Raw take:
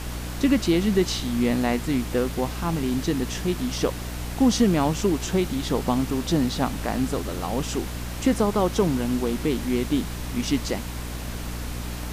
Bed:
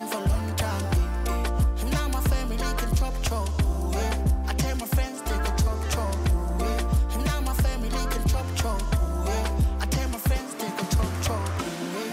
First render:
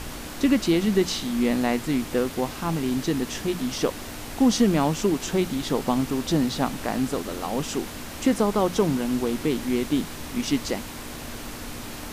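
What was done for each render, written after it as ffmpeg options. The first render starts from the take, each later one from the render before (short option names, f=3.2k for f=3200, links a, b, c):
-af "bandreject=f=60:t=h:w=6,bandreject=f=120:t=h:w=6,bandreject=f=180:t=h:w=6"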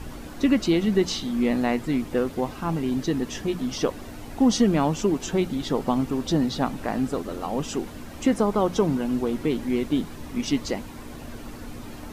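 -af "afftdn=nr=10:nf=-37"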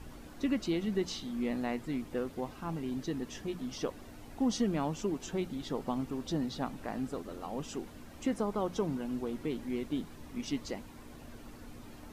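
-af "volume=-11dB"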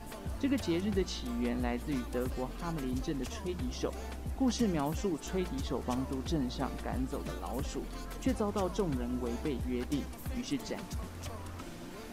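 -filter_complex "[1:a]volume=-16.5dB[a];[0:a][a]amix=inputs=2:normalize=0"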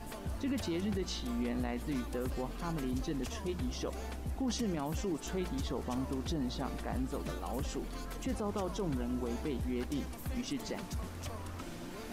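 -af "alimiter=level_in=3dB:limit=-24dB:level=0:latency=1:release=13,volume=-3dB,areverse,acompressor=mode=upward:threshold=-40dB:ratio=2.5,areverse"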